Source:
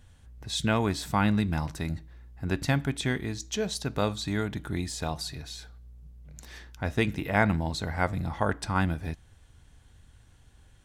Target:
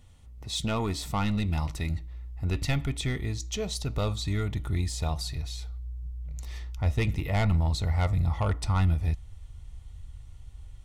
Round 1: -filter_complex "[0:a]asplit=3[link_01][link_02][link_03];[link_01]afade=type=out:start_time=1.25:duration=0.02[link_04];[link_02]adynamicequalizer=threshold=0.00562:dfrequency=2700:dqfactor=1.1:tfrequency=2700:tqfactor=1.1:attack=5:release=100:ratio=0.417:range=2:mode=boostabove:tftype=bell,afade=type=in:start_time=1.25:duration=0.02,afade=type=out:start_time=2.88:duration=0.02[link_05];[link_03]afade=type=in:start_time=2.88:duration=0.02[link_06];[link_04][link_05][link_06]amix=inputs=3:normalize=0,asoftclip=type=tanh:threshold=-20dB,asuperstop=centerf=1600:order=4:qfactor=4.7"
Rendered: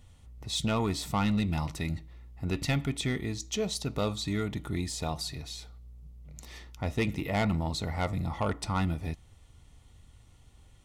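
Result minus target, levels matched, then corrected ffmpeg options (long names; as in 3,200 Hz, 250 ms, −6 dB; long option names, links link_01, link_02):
125 Hz band −3.5 dB
-filter_complex "[0:a]asplit=3[link_01][link_02][link_03];[link_01]afade=type=out:start_time=1.25:duration=0.02[link_04];[link_02]adynamicequalizer=threshold=0.00562:dfrequency=2700:dqfactor=1.1:tfrequency=2700:tqfactor=1.1:attack=5:release=100:ratio=0.417:range=2:mode=boostabove:tftype=bell,afade=type=in:start_time=1.25:duration=0.02,afade=type=out:start_time=2.88:duration=0.02[link_05];[link_03]afade=type=in:start_time=2.88:duration=0.02[link_06];[link_04][link_05][link_06]amix=inputs=3:normalize=0,asoftclip=type=tanh:threshold=-20dB,asuperstop=centerf=1600:order=4:qfactor=4.7,asubboost=boost=6:cutoff=91"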